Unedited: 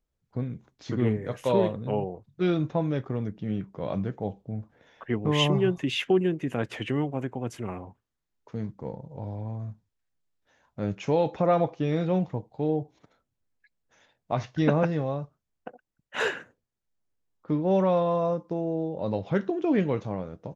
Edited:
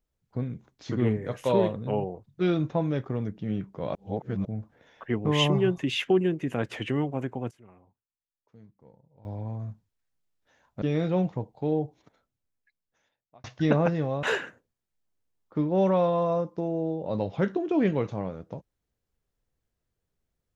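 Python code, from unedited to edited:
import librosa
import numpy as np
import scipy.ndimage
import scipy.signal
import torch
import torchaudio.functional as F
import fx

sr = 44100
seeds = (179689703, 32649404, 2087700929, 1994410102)

y = fx.edit(x, sr, fx.reverse_span(start_s=3.95, length_s=0.5),
    fx.fade_down_up(start_s=7.36, length_s=2.04, db=-19.5, fade_s=0.15, curve='log'),
    fx.cut(start_s=10.82, length_s=0.97),
    fx.fade_out_span(start_s=12.81, length_s=1.6),
    fx.cut(start_s=15.2, length_s=0.96), tone=tone)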